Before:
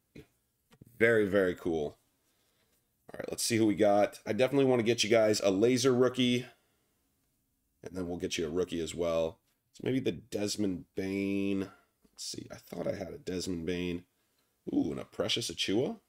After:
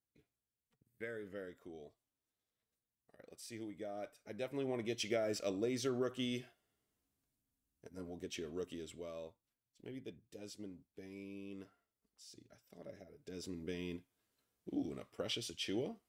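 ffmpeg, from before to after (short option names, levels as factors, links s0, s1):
-af "volume=0.75,afade=t=in:st=3.94:d=1.09:silence=0.354813,afade=t=out:st=8.68:d=0.47:silence=0.473151,afade=t=in:st=13.05:d=0.59:silence=0.375837"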